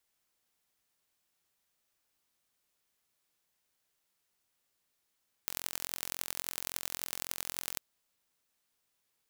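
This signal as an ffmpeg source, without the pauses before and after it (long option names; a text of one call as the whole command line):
ffmpeg -f lavfi -i "aevalsrc='0.501*eq(mod(n,1011),0)*(0.5+0.5*eq(mod(n,4044),0))':duration=2.31:sample_rate=44100" out.wav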